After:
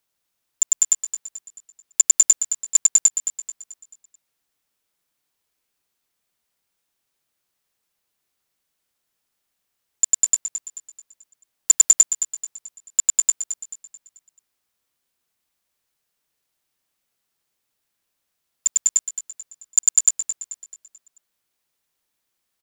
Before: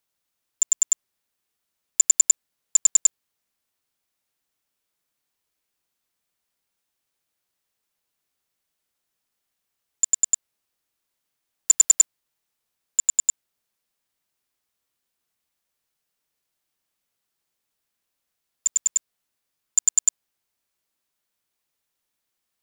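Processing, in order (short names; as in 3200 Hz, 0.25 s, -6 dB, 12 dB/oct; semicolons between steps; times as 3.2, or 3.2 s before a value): feedback echo 0.218 s, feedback 43%, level -10.5 dB; gain +2.5 dB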